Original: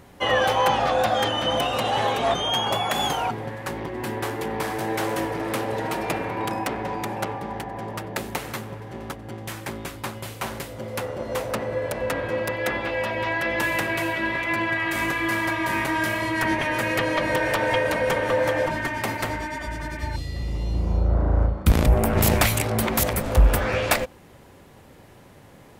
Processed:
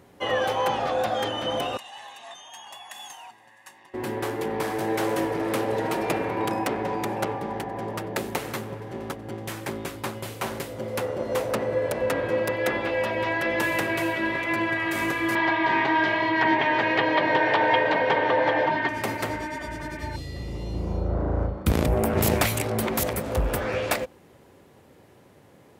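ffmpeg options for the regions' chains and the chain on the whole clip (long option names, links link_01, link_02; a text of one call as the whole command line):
ffmpeg -i in.wav -filter_complex "[0:a]asettb=1/sr,asplit=3[link_01][link_02][link_03];[link_01]atrim=end=1.774[link_04];[link_02]atrim=start=1.77:end=3.94,asetpts=PTS-STARTPTS,afade=type=in:duration=0.004:curve=qsin,afade=type=out:start_time=2.166:duration=0.004:curve=qsin,bandpass=frequency=5900:width_type=q:width=1.1,equalizer=frequency=4800:width_type=o:width=1.1:gain=-10,aecho=1:1:1.1:0.67,atrim=end_sample=95697[link_05];[link_03]atrim=start=3.936[link_06];[link_04][link_05]acrossfade=duration=0.004:curve1=hsin:curve2=qsin[link_07];[link_07][link_06]acrossfade=duration=0.004:curve1=qsin:curve2=hsin,asettb=1/sr,asplit=3[link_08][link_09][link_10];[link_08]atrim=end=15.354[link_11];[link_09]atrim=start=15.35:end=18.89,asetpts=PTS-STARTPTS,afade=type=in:duration=0.004:curve=qsin,afade=type=out:start_time=3.536:duration=0.004:curve=qsin,acontrast=48,highpass=190,equalizer=frequency=210:width_type=q:width=4:gain=-9,equalizer=frequency=330:width_type=q:width=4:gain=-4,equalizer=frequency=530:width_type=q:width=4:gain=-9,equalizer=frequency=840:width_type=q:width=4:gain=4,equalizer=frequency=1300:width_type=q:width=4:gain=-6,equalizer=frequency=2500:width_type=q:width=4:gain=-4,lowpass=frequency=3900:width=0.5412,lowpass=frequency=3900:width=1.3066[link_12];[link_10]atrim=start=18.886[link_13];[link_11][link_12]acrossfade=duration=0.004:curve1=hsin:curve2=qsin[link_14];[link_14][link_13]acrossfade=duration=0.004:curve1=qsin:curve2=hsin,highpass=69,equalizer=frequency=400:width=1.2:gain=4.5,dynaudnorm=framelen=710:gausssize=11:maxgain=6dB,volume=-6dB" out.wav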